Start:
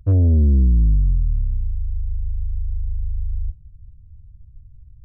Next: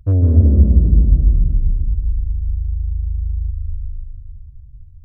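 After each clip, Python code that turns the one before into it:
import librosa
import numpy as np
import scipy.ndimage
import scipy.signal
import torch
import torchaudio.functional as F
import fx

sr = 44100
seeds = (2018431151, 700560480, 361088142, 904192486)

y = fx.rev_plate(x, sr, seeds[0], rt60_s=2.8, hf_ratio=0.9, predelay_ms=120, drr_db=0.5)
y = y * 10.0 ** (1.0 / 20.0)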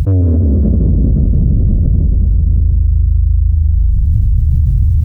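y = scipy.signal.sosfilt(scipy.signal.butter(2, 76.0, 'highpass', fs=sr, output='sos'), x)
y = fx.echo_feedback(y, sr, ms=527, feedback_pct=37, wet_db=-10.5)
y = fx.env_flatten(y, sr, amount_pct=100)
y = y * 10.0 ** (-2.0 / 20.0)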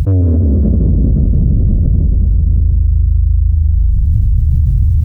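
y = x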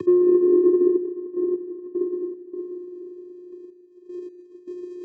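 y = fx.vocoder(x, sr, bands=8, carrier='square', carrier_hz=357.0)
y = fx.step_gate(y, sr, bpm=77, pattern='xxxxx..x..xx.x', floor_db=-12.0, edge_ms=4.5)
y = y + 10.0 ** (-16.5 / 20.0) * np.pad(y, (int(162 * sr / 1000.0), 0))[:len(y)]
y = y * 10.0 ** (-4.0 / 20.0)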